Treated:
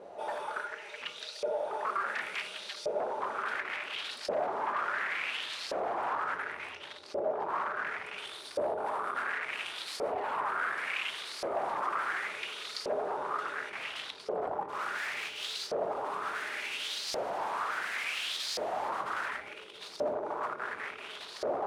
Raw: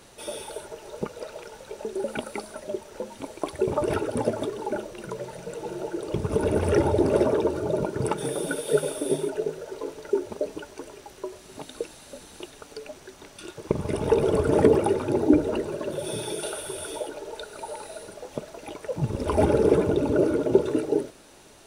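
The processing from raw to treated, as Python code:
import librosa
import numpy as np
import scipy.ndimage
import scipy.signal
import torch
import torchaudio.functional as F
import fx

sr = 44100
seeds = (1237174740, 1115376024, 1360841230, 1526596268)

p1 = fx.spec_flatten(x, sr, power=0.38, at=(14.68, 15.66), fade=0.02)
p2 = p1 + fx.echo_diffused(p1, sr, ms=1472, feedback_pct=57, wet_db=-3.5, dry=0)
p3 = fx.vibrato(p2, sr, rate_hz=0.66, depth_cents=5.7)
p4 = fx.spec_paint(p3, sr, seeds[0], shape='fall', start_s=10.11, length_s=0.69, low_hz=270.0, high_hz=2600.0, level_db=-31.0)
p5 = fx.comb(p4, sr, ms=5.6, depth=0.95, at=(11.61, 12.26))
p6 = fx.over_compress(p5, sr, threshold_db=-29.0, ratio=-1.0)
p7 = fx.room_shoebox(p6, sr, seeds[1], volume_m3=400.0, walls='furnished', distance_m=1.3)
p8 = 10.0 ** (-27.0 / 20.0) * (np.abs((p7 / 10.0 ** (-27.0 / 20.0) + 3.0) % 4.0 - 2.0) - 1.0)
p9 = fx.filter_lfo_bandpass(p8, sr, shape='saw_up', hz=0.7, low_hz=550.0, high_hz=5000.0, q=3.9)
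p10 = fx.doppler_dist(p9, sr, depth_ms=0.15, at=(3.54, 4.1))
y = p10 * librosa.db_to_amplitude(8.0)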